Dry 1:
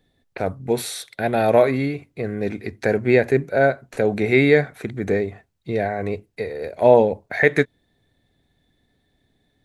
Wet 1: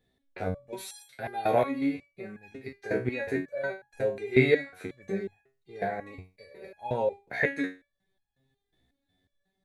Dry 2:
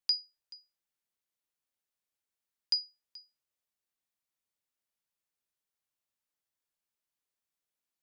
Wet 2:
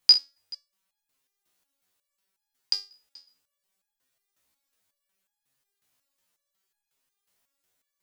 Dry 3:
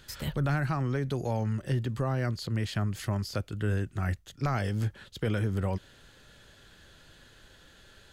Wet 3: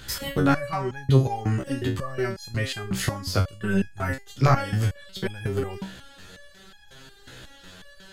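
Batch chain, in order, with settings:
step-sequenced resonator 5.5 Hz 64–830 Hz
normalise the peak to −6 dBFS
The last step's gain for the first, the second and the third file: +1.0, +23.0, +19.5 decibels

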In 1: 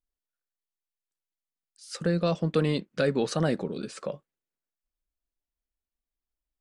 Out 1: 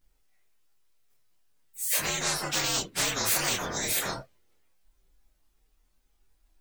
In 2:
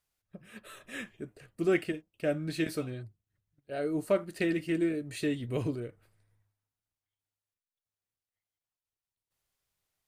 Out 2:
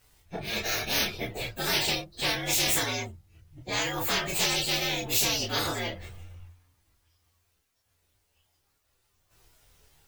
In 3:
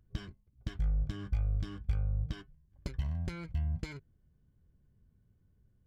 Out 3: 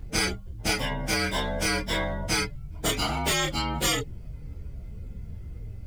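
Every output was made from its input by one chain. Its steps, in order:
partials spread apart or drawn together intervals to 118%
multi-voice chorus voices 6, 0.46 Hz, delay 27 ms, depth 1.6 ms
every bin compressed towards the loudest bin 10 to 1
loudness normalisation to −27 LKFS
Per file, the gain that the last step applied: +4.5, +8.0, +11.0 decibels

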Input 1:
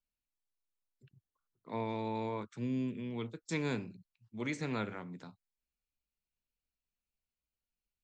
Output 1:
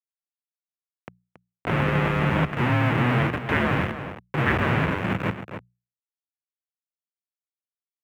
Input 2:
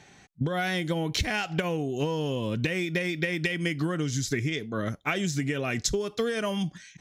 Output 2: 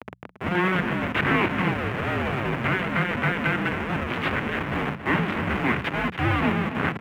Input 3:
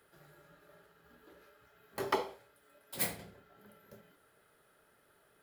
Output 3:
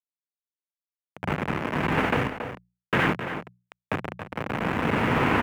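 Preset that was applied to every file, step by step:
compressor on every frequency bin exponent 0.6
camcorder AGC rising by 8.7 dB per second
comparator with hysteresis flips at −28.5 dBFS
brickwall limiter −27 dBFS
single-sideband voice off tune −370 Hz 230–3,000 Hz
high-pass filter 140 Hz 12 dB per octave
dead-zone distortion −59 dBFS
mains-hum notches 60/120/180 Hz
on a send: single-tap delay 277 ms −11.5 dB
on the sum: dynamic equaliser 630 Hz, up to −5 dB, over −48 dBFS, Q 0.89
normalise the peak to −9 dBFS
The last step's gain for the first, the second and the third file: +16.0, +12.5, +19.0 decibels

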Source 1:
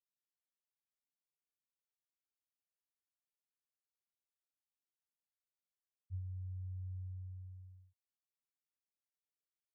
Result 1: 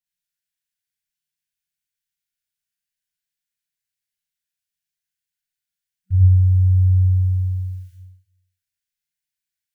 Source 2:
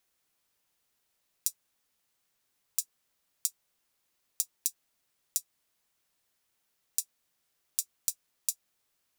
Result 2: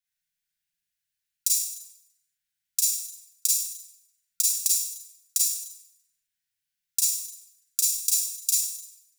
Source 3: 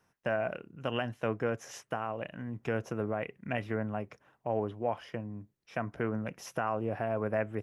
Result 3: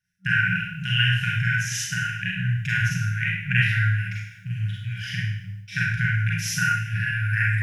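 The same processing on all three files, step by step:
noise gate with hold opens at −57 dBFS
brick-wall band-stop 190–1,400 Hz
four-comb reverb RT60 0.76 s, combs from 33 ms, DRR −5.5 dB
normalise the peak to −6 dBFS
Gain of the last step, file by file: +24.0, +7.0, +12.5 decibels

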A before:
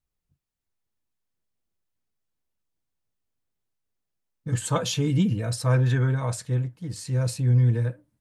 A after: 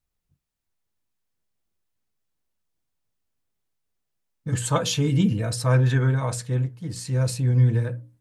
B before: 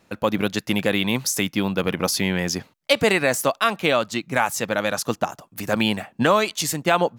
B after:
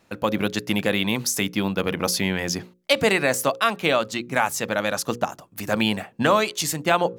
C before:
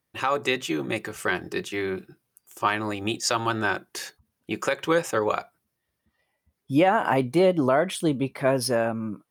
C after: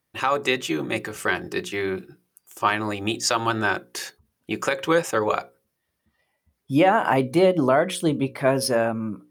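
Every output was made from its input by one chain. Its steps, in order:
mains-hum notches 60/120/180/240/300/360/420/480/540 Hz
loudness normalisation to −23 LKFS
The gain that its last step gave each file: +2.5, −0.5, +2.5 decibels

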